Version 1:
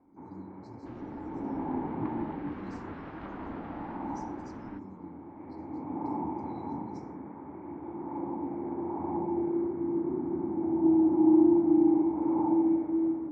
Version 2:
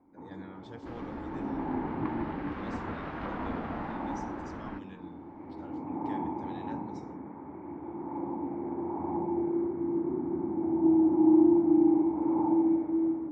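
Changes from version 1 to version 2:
speech: remove brick-wall FIR band-stop 430–3900 Hz; second sound +6.5 dB; master: add treble shelf 11 kHz +10.5 dB

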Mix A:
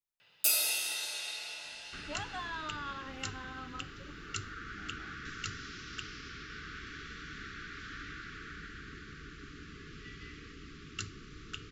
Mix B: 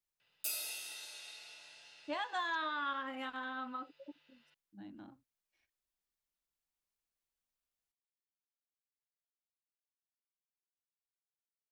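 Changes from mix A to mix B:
speech +4.0 dB; first sound -11.0 dB; second sound: muted

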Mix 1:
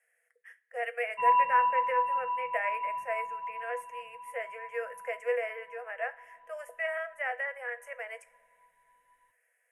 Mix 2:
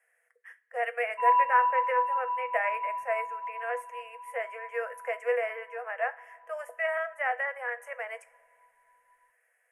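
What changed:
background -8.5 dB; master: add peaking EQ 1 kHz +9.5 dB 1.1 oct

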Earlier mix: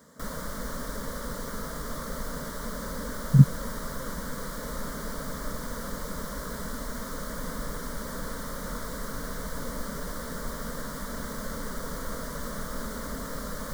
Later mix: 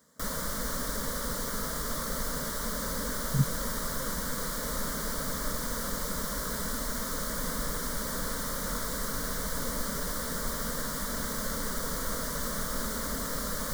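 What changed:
speech -11.0 dB; master: add treble shelf 2.4 kHz +7.5 dB

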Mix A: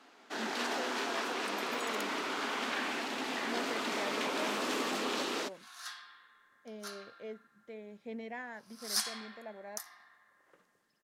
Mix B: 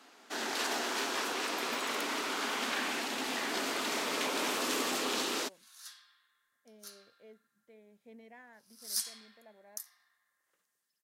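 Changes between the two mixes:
speech -11.5 dB; first sound: add treble shelf 6 kHz +11.5 dB; second sound: add pre-emphasis filter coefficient 0.9

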